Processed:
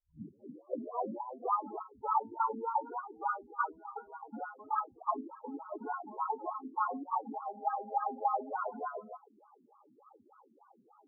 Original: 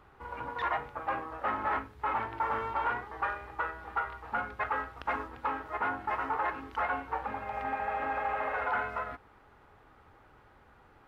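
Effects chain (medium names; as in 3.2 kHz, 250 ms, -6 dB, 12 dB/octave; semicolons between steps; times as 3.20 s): tape start-up on the opening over 1.61 s; wah-wah 3.4 Hz 220–1200 Hz, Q 4.9; loudest bins only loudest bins 8; trim +8.5 dB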